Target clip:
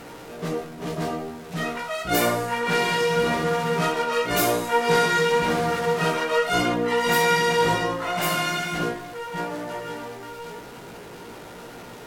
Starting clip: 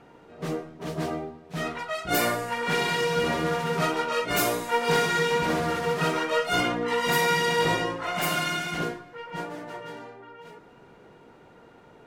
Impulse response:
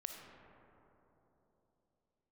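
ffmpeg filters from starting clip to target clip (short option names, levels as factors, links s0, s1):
-filter_complex "[0:a]aeval=exprs='val(0)+0.5*0.0119*sgn(val(0))':c=same,asplit=2[s0][s1];[1:a]atrim=start_sample=2205,atrim=end_sample=3969,adelay=17[s2];[s1][s2]afir=irnorm=-1:irlink=0,volume=0.944[s3];[s0][s3]amix=inputs=2:normalize=0" -ar 44100 -c:a sbc -b:a 128k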